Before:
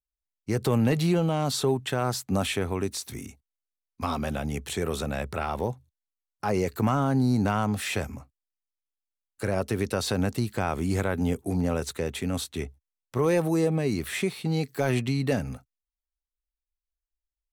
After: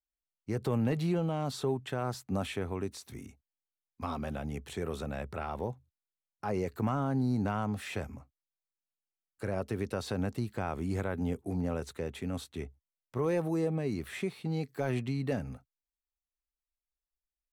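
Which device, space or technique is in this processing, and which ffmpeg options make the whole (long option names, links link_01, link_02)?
behind a face mask: -af "highshelf=frequency=3000:gain=-8,volume=-6.5dB"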